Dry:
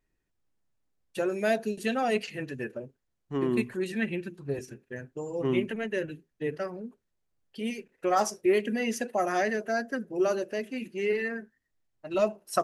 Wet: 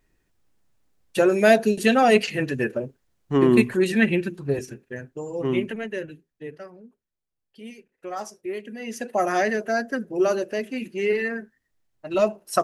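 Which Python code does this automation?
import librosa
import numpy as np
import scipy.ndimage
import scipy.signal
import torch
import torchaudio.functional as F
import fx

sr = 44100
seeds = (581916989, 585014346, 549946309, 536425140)

y = fx.gain(x, sr, db=fx.line((4.16, 10.5), (5.13, 3.0), (5.68, 3.0), (6.7, -7.5), (8.75, -7.5), (9.17, 5.0)))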